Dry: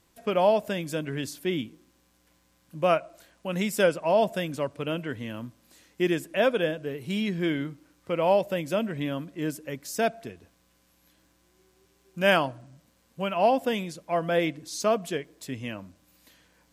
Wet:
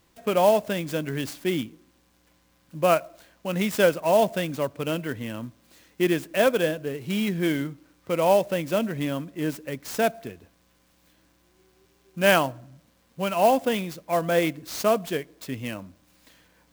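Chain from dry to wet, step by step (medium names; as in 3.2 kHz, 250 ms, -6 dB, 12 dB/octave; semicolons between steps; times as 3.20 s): sampling jitter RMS 0.024 ms; trim +2.5 dB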